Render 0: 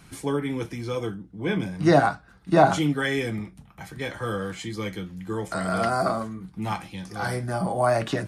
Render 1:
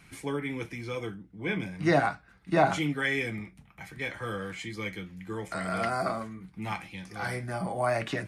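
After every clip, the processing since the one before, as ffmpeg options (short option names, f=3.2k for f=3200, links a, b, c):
-af "equalizer=f=2.2k:t=o:w=0.66:g=9.5,volume=-6.5dB"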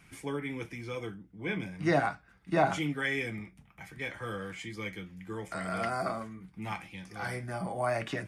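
-af "bandreject=f=4.1k:w=12,volume=-3dB"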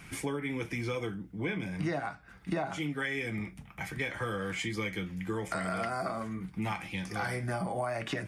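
-af "acompressor=threshold=-39dB:ratio=12,volume=9dB"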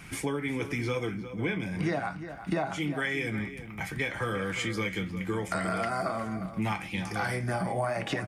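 -filter_complex "[0:a]asplit=2[a][b];[b]adelay=355.7,volume=-11dB,highshelf=f=4k:g=-8[c];[a][c]amix=inputs=2:normalize=0,volume=3dB"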